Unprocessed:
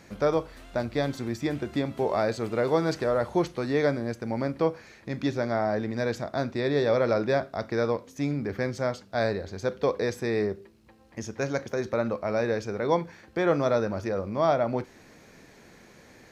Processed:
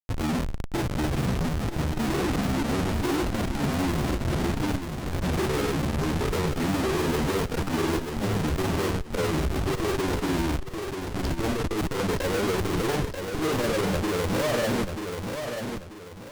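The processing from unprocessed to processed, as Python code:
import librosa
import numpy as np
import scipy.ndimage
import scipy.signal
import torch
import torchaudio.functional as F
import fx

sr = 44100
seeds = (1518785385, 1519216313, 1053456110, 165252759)

y = fx.pitch_glide(x, sr, semitones=-11.5, runs='ending unshifted')
y = fx.high_shelf(y, sr, hz=5400.0, db=-11.0)
y = fx.notch(y, sr, hz=2200.0, q=7.3)
y = fx.schmitt(y, sr, flips_db=-40.5)
y = fx.granulator(y, sr, seeds[0], grain_ms=100.0, per_s=20.0, spray_ms=25.0, spread_st=0)
y = fx.echo_feedback(y, sr, ms=937, feedback_pct=32, wet_db=-6.5)
y = fx.transformer_sat(y, sr, knee_hz=58.0)
y = y * librosa.db_to_amplitude(5.0)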